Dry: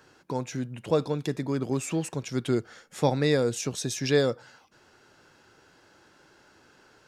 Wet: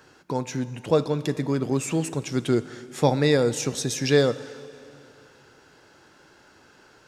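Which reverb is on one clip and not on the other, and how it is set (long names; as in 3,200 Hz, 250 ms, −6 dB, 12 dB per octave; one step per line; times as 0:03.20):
dense smooth reverb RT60 2.7 s, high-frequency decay 0.9×, DRR 14.5 dB
level +3.5 dB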